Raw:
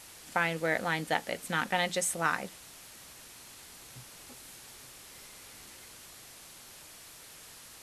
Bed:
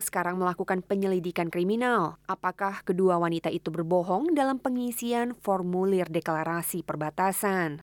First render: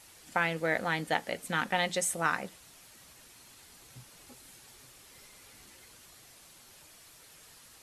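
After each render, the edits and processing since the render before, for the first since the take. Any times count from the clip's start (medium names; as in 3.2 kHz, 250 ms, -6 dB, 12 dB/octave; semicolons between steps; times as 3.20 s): noise reduction 6 dB, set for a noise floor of -51 dBFS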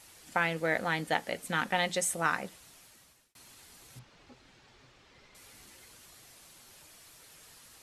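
2.52–3.35 s: fade out equal-power; 3.99–5.35 s: distance through air 170 m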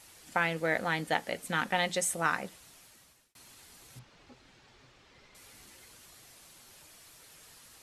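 no audible change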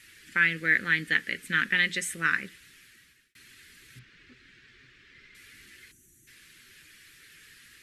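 5.92–6.28 s: time-frequency box 390–5700 Hz -20 dB; FFT filter 390 Hz 0 dB, 760 Hz -26 dB, 1.7 kHz +11 dB, 6.1 kHz -3 dB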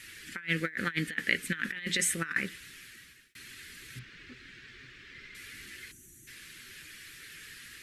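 compressor with a negative ratio -31 dBFS, ratio -0.5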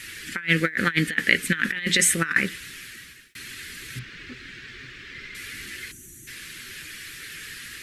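trim +9.5 dB; peak limiter -2 dBFS, peak gain reduction 1 dB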